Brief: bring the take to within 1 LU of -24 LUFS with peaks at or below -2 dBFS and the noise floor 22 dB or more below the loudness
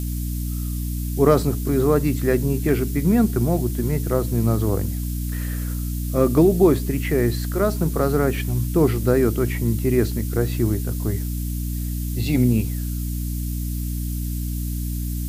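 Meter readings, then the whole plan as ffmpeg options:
hum 60 Hz; highest harmonic 300 Hz; hum level -23 dBFS; noise floor -26 dBFS; noise floor target -44 dBFS; loudness -22.0 LUFS; peak level -3.0 dBFS; loudness target -24.0 LUFS
-> -af "bandreject=f=60:t=h:w=4,bandreject=f=120:t=h:w=4,bandreject=f=180:t=h:w=4,bandreject=f=240:t=h:w=4,bandreject=f=300:t=h:w=4"
-af "afftdn=nr=18:nf=-26"
-af "volume=0.794"

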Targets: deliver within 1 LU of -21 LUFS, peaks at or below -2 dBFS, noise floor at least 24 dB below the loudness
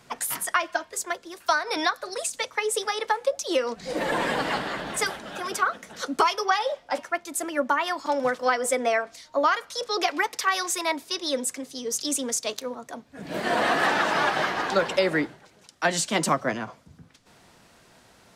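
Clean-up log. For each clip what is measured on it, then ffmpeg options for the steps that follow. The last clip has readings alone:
loudness -26.0 LUFS; peak level -9.5 dBFS; loudness target -21.0 LUFS
-> -af "volume=1.78"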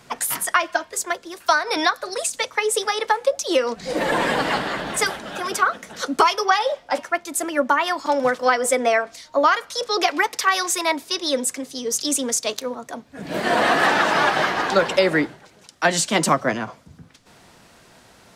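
loudness -21.0 LUFS; peak level -4.5 dBFS; noise floor -51 dBFS

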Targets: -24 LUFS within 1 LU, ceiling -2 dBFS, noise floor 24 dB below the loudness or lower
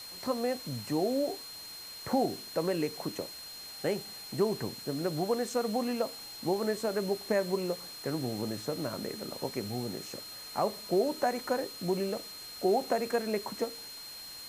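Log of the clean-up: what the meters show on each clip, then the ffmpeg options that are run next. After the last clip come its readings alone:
steady tone 4.2 kHz; tone level -44 dBFS; noise floor -45 dBFS; noise floor target -58 dBFS; loudness -33.5 LUFS; peak level -17.0 dBFS; loudness target -24.0 LUFS
-> -af "bandreject=f=4200:w=30"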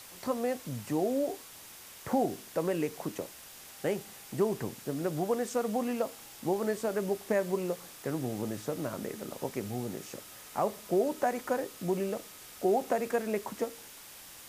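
steady tone not found; noise floor -50 dBFS; noise floor target -58 dBFS
-> -af "afftdn=nr=8:nf=-50"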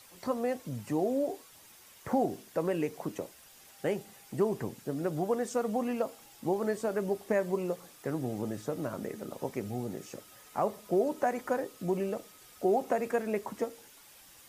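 noise floor -56 dBFS; noise floor target -58 dBFS
-> -af "afftdn=nr=6:nf=-56"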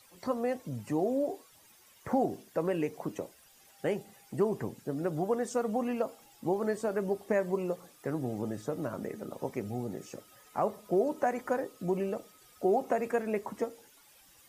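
noise floor -60 dBFS; loudness -33.5 LUFS; peak level -17.0 dBFS; loudness target -24.0 LUFS
-> -af "volume=2.99"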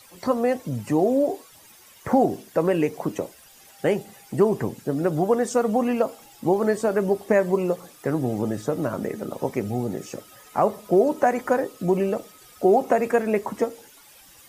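loudness -24.0 LUFS; peak level -7.5 dBFS; noise floor -51 dBFS

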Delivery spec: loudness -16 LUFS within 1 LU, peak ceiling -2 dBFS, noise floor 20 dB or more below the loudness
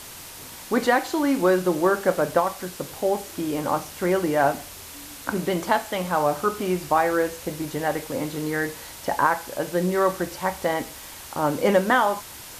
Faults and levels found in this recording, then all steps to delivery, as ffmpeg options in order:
noise floor -41 dBFS; noise floor target -44 dBFS; loudness -24.0 LUFS; peak level -5.5 dBFS; loudness target -16.0 LUFS
-> -af "afftdn=nr=6:nf=-41"
-af "volume=2.51,alimiter=limit=0.794:level=0:latency=1"

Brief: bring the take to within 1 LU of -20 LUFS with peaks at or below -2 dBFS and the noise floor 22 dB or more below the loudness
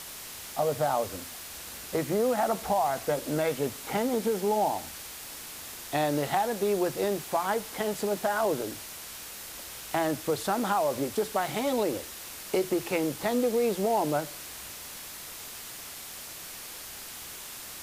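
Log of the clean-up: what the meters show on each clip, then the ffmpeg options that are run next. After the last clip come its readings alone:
noise floor -42 dBFS; noise floor target -53 dBFS; loudness -30.5 LUFS; peak level -14.5 dBFS; loudness target -20.0 LUFS
-> -af "afftdn=nr=11:nf=-42"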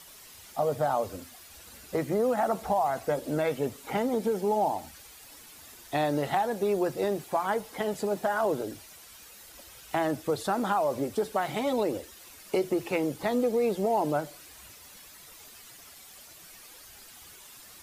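noise floor -50 dBFS; noise floor target -51 dBFS
-> -af "afftdn=nr=6:nf=-50"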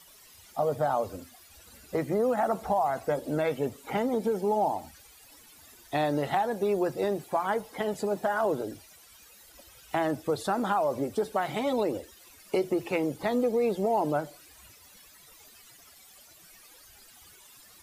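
noise floor -55 dBFS; loudness -29.0 LUFS; peak level -14.5 dBFS; loudness target -20.0 LUFS
-> -af "volume=2.82"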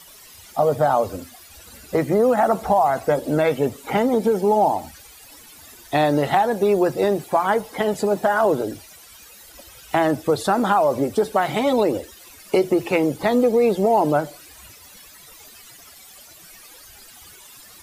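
loudness -20.0 LUFS; peak level -5.5 dBFS; noise floor -46 dBFS

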